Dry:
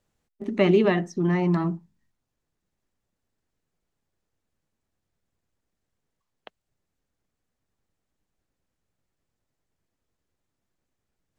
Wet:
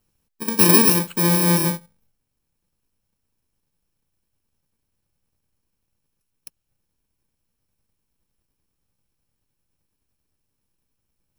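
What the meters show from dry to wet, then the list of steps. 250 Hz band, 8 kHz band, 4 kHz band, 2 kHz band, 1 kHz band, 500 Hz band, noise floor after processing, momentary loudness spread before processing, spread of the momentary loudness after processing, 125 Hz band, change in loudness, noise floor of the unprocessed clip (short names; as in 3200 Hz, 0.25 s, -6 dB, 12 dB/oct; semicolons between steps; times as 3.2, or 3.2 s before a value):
+3.0 dB, n/a, +13.5 dB, +5.5 dB, +6.5 dB, -2.0 dB, -77 dBFS, 15 LU, 15 LU, +3.5 dB, +7.5 dB, -82 dBFS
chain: FFT order left unsorted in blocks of 64 samples; gain +5 dB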